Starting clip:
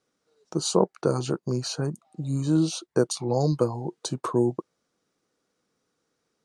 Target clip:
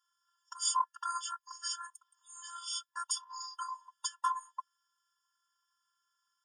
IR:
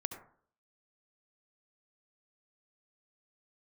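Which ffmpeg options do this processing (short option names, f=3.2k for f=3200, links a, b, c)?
-af "afftfilt=real='hypot(re,im)*cos(PI*b)':imag='0':win_size=512:overlap=0.75,afftfilt=real='re*eq(mod(floor(b*sr/1024/930),2),1)':imag='im*eq(mod(floor(b*sr/1024/930),2),1)':win_size=1024:overlap=0.75,volume=4.5dB"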